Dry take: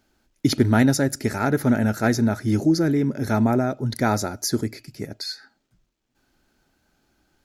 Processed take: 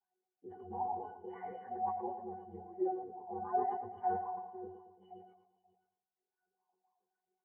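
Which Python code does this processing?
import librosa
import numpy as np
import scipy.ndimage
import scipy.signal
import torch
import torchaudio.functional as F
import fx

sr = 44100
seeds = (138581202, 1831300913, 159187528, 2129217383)

y = fx.partial_stretch(x, sr, pct=121)
y = fx.highpass(y, sr, hz=360.0, slope=6)
y = fx.peak_eq(y, sr, hz=680.0, db=3.5, octaves=1.2)
y = fx.octave_resonator(y, sr, note='F#', decay_s=0.43)
y = fx.filter_lfo_lowpass(y, sr, shape='sine', hz=0.85, low_hz=910.0, high_hz=2200.0, q=6.6)
y = y + 10.0 ** (-20.5 / 20.0) * np.pad(y, (int(532 * sr / 1000.0), 0))[:len(y)]
y = fx.wah_lfo(y, sr, hz=3.8, low_hz=460.0, high_hz=1100.0, q=4.3)
y = fx.echo_feedback(y, sr, ms=113, feedback_pct=50, wet_db=-11.0)
y = fx.sustainer(y, sr, db_per_s=71.0)
y = F.gain(torch.from_numpy(y), 10.5).numpy()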